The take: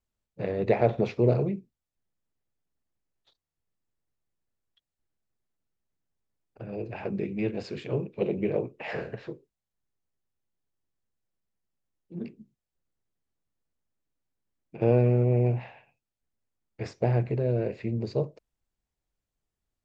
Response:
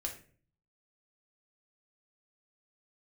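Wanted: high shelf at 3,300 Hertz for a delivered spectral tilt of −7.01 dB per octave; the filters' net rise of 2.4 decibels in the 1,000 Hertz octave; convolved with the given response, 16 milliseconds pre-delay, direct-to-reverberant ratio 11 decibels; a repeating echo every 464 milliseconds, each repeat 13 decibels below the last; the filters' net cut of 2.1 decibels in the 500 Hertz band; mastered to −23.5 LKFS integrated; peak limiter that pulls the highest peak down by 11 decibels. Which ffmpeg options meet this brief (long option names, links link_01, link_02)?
-filter_complex "[0:a]equalizer=frequency=500:width_type=o:gain=-4,equalizer=frequency=1000:width_type=o:gain=7,highshelf=frequency=3300:gain=-7.5,alimiter=limit=-21dB:level=0:latency=1,aecho=1:1:464|928|1392:0.224|0.0493|0.0108,asplit=2[link_01][link_02];[1:a]atrim=start_sample=2205,adelay=16[link_03];[link_02][link_03]afir=irnorm=-1:irlink=0,volume=-11dB[link_04];[link_01][link_04]amix=inputs=2:normalize=0,volume=9.5dB"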